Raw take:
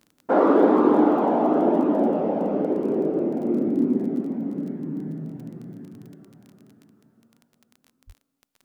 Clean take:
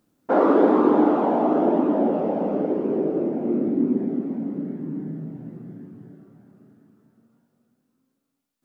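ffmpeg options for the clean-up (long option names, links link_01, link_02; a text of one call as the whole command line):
ffmpeg -i in.wav -filter_complex "[0:a]adeclick=threshold=4,asplit=3[link_01][link_02][link_03];[link_01]afade=type=out:start_time=8.06:duration=0.02[link_04];[link_02]highpass=frequency=140:width=0.5412,highpass=frequency=140:width=1.3066,afade=type=in:start_time=8.06:duration=0.02,afade=type=out:start_time=8.18:duration=0.02[link_05];[link_03]afade=type=in:start_time=8.18:duration=0.02[link_06];[link_04][link_05][link_06]amix=inputs=3:normalize=0" out.wav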